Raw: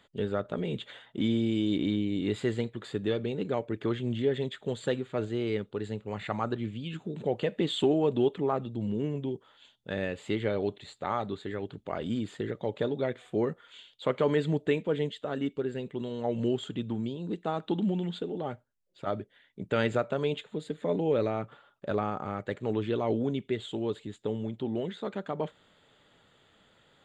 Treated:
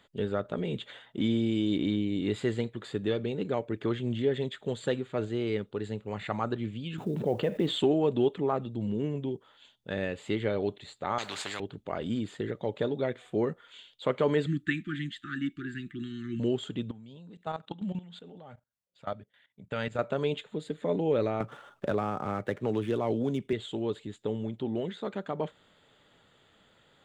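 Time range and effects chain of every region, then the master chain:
6.98–7.79 s: treble shelf 2.4 kHz -11.5 dB + companded quantiser 8-bit + level flattener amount 50%
11.18–11.60 s: frequency weighting A + spectrum-flattening compressor 4:1
14.46–16.40 s: Chebyshev band-stop 350–1200 Hz, order 5 + peaking EQ 1.7 kHz +10 dB 0.42 oct
16.91–19.99 s: high-pass 51 Hz + peaking EQ 350 Hz -11.5 dB 0.58 oct + level held to a coarse grid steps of 16 dB
21.40–23.53 s: median filter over 9 samples + three bands compressed up and down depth 70%
whole clip: none

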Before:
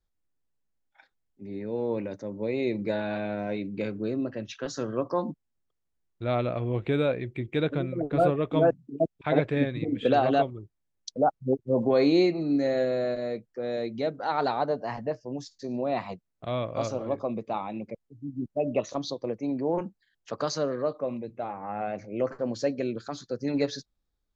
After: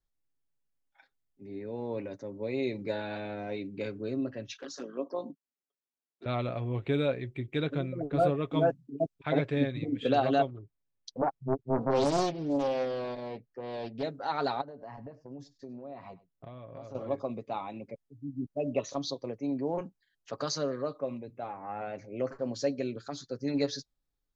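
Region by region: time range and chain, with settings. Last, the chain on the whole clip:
4.57–6.26 s: steep high-pass 210 Hz + touch-sensitive flanger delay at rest 8.9 ms, full sweep at -26.5 dBFS + AM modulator 52 Hz, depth 25%
10.47–14.03 s: distance through air 130 m + loudspeaker Doppler distortion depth 0.94 ms
14.61–16.95 s: treble shelf 2.5 kHz -12 dB + compression 10:1, threshold -36 dBFS + delay 99 ms -19.5 dB
whole clip: comb 7.3 ms, depth 39%; dynamic bell 5.3 kHz, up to +5 dB, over -49 dBFS, Q 0.84; trim -5 dB

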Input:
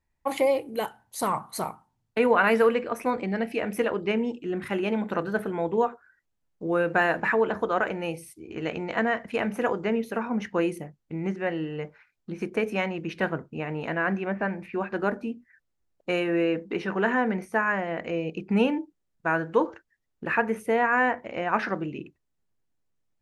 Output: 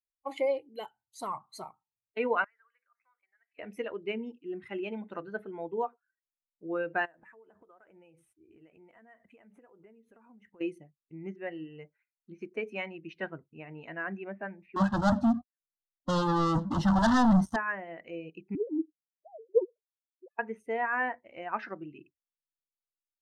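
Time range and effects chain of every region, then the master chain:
2.44–3.59 s: ladder band-pass 1.8 kHz, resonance 40% + peaking EQ 2.7 kHz -8 dB 0.5 oct + compression 2.5:1, threshold -50 dBFS
7.05–10.61 s: CVSD coder 64 kbps + peaking EQ 4.7 kHz -12.5 dB 1.1 oct + compression 16:1, threshold -36 dBFS
14.76–17.56 s: bass shelf 340 Hz +11.5 dB + waveshaping leveller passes 5 + static phaser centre 970 Hz, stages 4
18.55–20.39 s: formants replaced by sine waves + inverse Chebyshev low-pass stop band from 1.3 kHz
whole clip: expander on every frequency bin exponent 1.5; low-pass 6.1 kHz 12 dB/octave; trim -4.5 dB

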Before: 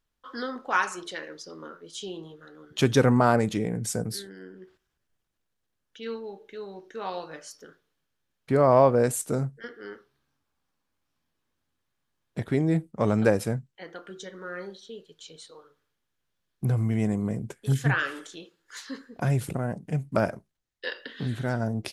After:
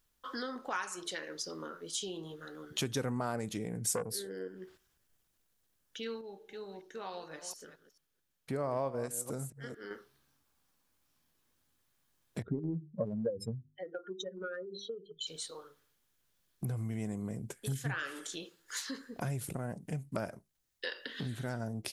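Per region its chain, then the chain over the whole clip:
3.94–4.48 s: peaking EQ 490 Hz +15 dB 0.67 oct + transformer saturation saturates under 800 Hz
6.21–9.91 s: chunks repeated in reverse 221 ms, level -13 dB + upward expansion, over -29 dBFS
12.42–15.27 s: spectral contrast enhancement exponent 2.8 + hum notches 50/100/150/200/250/300/350/400 Hz + transient shaper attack +9 dB, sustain 0 dB
whole clip: compression 2.5:1, threshold -42 dBFS; treble shelf 6.1 kHz +11.5 dB; trim +1.5 dB

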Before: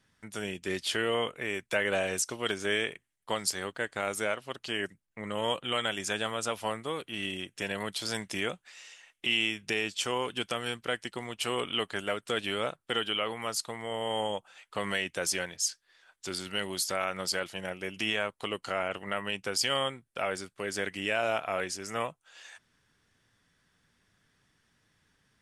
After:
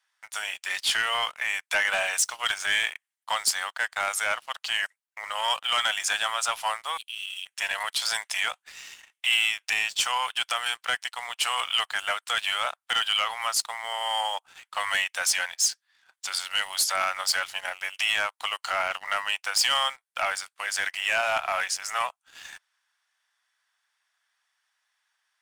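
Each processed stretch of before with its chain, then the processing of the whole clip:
6.97–7.46 s: steep high-pass 2.5 kHz 72 dB/octave + compression 5:1, threshold -39 dBFS
whole clip: steep high-pass 740 Hz 36 dB/octave; waveshaping leveller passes 2; trim +1 dB

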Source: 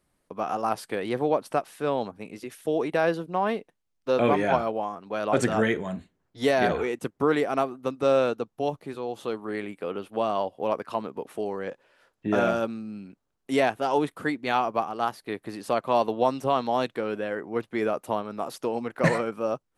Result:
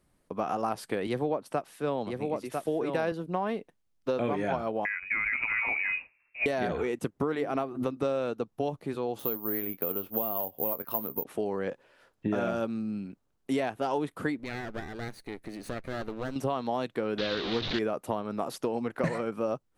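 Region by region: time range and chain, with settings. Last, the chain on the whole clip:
1.07–3.12 s: delay 998 ms -5.5 dB + three bands expanded up and down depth 70%
4.85–6.46 s: peaking EQ 520 Hz +8 dB 2.6 oct + compression, threshold -22 dBFS + frequency inversion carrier 2.7 kHz
7.33–7.97 s: dynamic bell 8.1 kHz, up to -6 dB, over -55 dBFS, Q 1 + hum notches 50/100/150/200/250/300/350 Hz + swell ahead of each attack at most 130 dB/s
9.19–11.24 s: peaking EQ 2.9 kHz -3.5 dB 2 oct + doubling 22 ms -14 dB + careless resampling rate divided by 3×, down filtered, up zero stuff
14.39–16.36 s: comb filter that takes the minimum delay 0.47 ms + compression 2:1, threshold -43 dBFS
17.18–17.79 s: one-bit delta coder 32 kbps, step -29 dBFS + resonant low-pass 3.8 kHz, resonance Q 5.6 + loudspeaker Doppler distortion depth 0.19 ms
whole clip: bass shelf 380 Hz +5 dB; compression, threshold -26 dBFS

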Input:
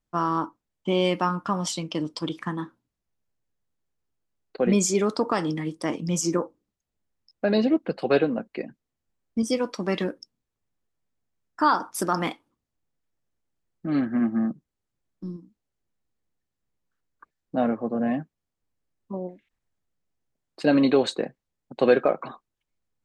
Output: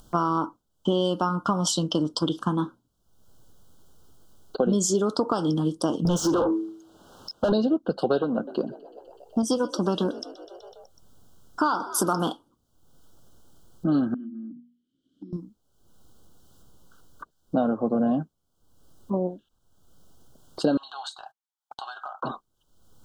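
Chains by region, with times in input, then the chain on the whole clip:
6.05–7.52 s: de-hum 108.5 Hz, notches 4 + compression 3:1, threshold -36 dBFS + overdrive pedal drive 33 dB, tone 1.5 kHz, clips at -17.5 dBFS
8.22–12.31 s: frequency-shifting echo 125 ms, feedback 65%, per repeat +42 Hz, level -21 dB + transformer saturation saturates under 640 Hz
14.14–15.33 s: hum notches 60/120/180/240 Hz + compression 3:1, threshold -36 dBFS + vowel filter i
20.77–22.23 s: elliptic high-pass 780 Hz + compression 5:1, threshold -40 dBFS + gate -59 dBFS, range -23 dB
whole clip: compression 6:1, threshold -27 dBFS; elliptic band-stop 1.5–3 kHz, stop band 40 dB; upward compressor, threshold -43 dBFS; trim +7.5 dB

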